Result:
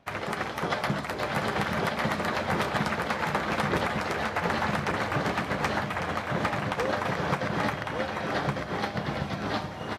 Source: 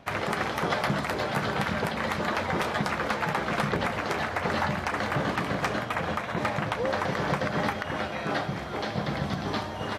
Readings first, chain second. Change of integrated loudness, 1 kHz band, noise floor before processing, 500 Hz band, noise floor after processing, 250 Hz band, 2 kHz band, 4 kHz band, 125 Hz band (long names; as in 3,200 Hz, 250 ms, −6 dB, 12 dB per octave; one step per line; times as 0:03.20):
0.0 dB, 0.0 dB, −35 dBFS, −0.5 dB, −36 dBFS, −0.5 dB, 0.0 dB, −0.5 dB, −0.5 dB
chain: single-tap delay 1,152 ms −3 dB
expander for the loud parts 1.5 to 1, over −41 dBFS